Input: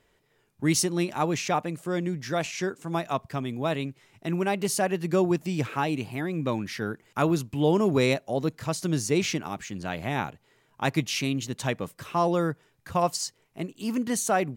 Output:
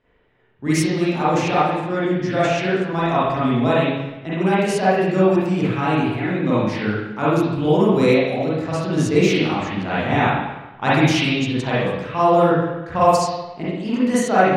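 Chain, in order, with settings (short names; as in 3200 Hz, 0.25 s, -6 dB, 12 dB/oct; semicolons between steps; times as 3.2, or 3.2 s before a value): spring tank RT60 1 s, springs 38/42/58 ms, chirp 30 ms, DRR -9.5 dB; low-pass opened by the level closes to 2900 Hz, open at -10.5 dBFS; vocal rider 2 s; gain -1.5 dB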